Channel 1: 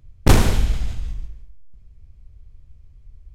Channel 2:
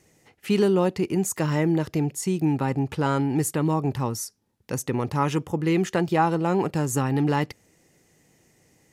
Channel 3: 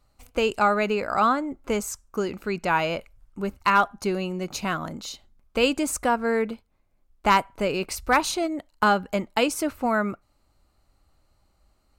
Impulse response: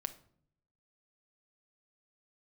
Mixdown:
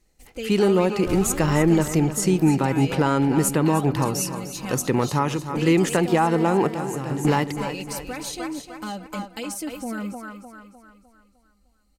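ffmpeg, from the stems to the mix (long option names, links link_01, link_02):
-filter_complex "[0:a]adelay=800,volume=-13dB[link_01];[1:a]highpass=frequency=120:poles=1,dynaudnorm=framelen=120:gausssize=21:maxgain=4dB,volume=0dB,asplit=3[link_02][link_03][link_04];[link_03]volume=-10.5dB[link_05];[link_04]volume=-11dB[link_06];[2:a]alimiter=limit=-13dB:level=0:latency=1:release=251,equalizer=frequency=10000:width=0.63:gain=5,aecho=1:1:3.9:0.77,volume=-4.5dB,asplit=3[link_07][link_08][link_09];[link_08]volume=-11.5dB[link_10];[link_09]apad=whole_len=393739[link_11];[link_02][link_11]sidechaingate=range=-33dB:threshold=-55dB:ratio=16:detection=peak[link_12];[link_01][link_07]amix=inputs=2:normalize=0,equalizer=frequency=1100:width=1.3:gain=-11.5,alimiter=limit=-23dB:level=0:latency=1,volume=0dB[link_13];[3:a]atrim=start_sample=2205[link_14];[link_05][link_14]afir=irnorm=-1:irlink=0[link_15];[link_06][link_10]amix=inputs=2:normalize=0,aecho=0:1:303|606|909|1212|1515|1818:1|0.45|0.202|0.0911|0.041|0.0185[link_16];[link_12][link_13][link_15][link_16]amix=inputs=4:normalize=0,alimiter=limit=-8.5dB:level=0:latency=1:release=170"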